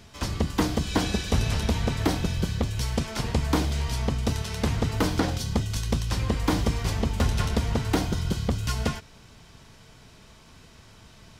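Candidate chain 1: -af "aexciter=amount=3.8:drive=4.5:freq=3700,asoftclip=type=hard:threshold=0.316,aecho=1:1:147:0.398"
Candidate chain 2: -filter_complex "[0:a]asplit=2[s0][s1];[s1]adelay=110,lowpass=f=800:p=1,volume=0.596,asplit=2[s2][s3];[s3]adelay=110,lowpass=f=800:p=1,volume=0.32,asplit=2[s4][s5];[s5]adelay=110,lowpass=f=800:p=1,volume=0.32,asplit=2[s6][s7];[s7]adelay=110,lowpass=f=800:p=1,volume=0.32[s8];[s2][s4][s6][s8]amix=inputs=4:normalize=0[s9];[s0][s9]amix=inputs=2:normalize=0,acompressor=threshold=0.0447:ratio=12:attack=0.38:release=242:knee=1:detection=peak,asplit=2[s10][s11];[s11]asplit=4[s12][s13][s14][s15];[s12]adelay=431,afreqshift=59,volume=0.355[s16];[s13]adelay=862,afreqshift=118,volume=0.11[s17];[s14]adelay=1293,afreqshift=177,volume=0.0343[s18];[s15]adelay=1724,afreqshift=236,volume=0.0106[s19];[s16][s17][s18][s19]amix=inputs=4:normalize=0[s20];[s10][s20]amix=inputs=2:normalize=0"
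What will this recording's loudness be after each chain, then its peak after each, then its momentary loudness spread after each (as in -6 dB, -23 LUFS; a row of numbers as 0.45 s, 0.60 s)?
-23.5 LUFS, -35.0 LUFS; -8.0 dBFS, -20.5 dBFS; 3 LU, 15 LU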